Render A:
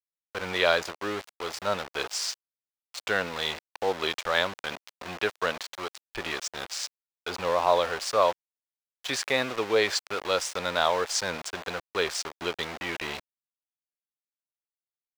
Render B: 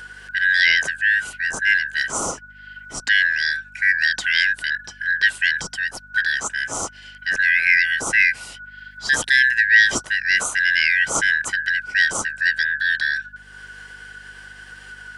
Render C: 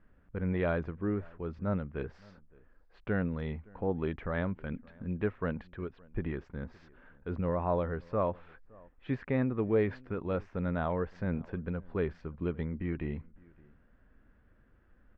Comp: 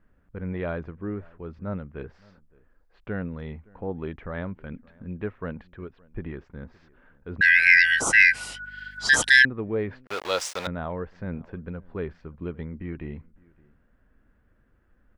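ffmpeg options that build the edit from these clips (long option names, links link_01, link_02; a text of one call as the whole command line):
ffmpeg -i take0.wav -i take1.wav -i take2.wav -filter_complex "[2:a]asplit=3[link_01][link_02][link_03];[link_01]atrim=end=7.412[link_04];[1:a]atrim=start=7.408:end=9.452[link_05];[link_02]atrim=start=9.448:end=10.072[link_06];[0:a]atrim=start=10.068:end=10.672[link_07];[link_03]atrim=start=10.668[link_08];[link_04][link_05]acrossfade=duration=0.004:curve1=hsin:curve2=hsin[link_09];[link_09][link_06]acrossfade=duration=0.004:curve1=hsin:curve2=hsin[link_10];[link_10][link_07]acrossfade=duration=0.004:curve1=hsin:curve2=hsin[link_11];[link_11][link_08]acrossfade=duration=0.004:curve1=hsin:curve2=hsin" out.wav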